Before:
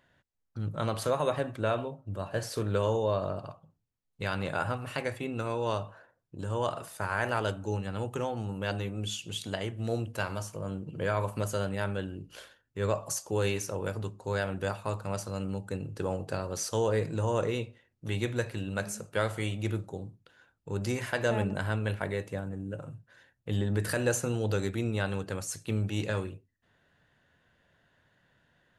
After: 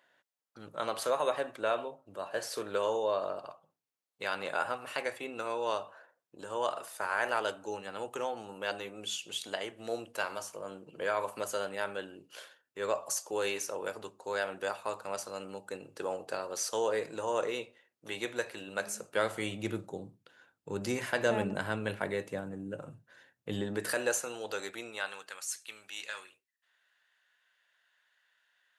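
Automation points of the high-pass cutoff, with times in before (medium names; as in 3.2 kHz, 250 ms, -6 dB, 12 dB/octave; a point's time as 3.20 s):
18.64 s 440 Hz
19.55 s 190 Hz
23.53 s 190 Hz
24.24 s 630 Hz
24.78 s 630 Hz
25.40 s 1.5 kHz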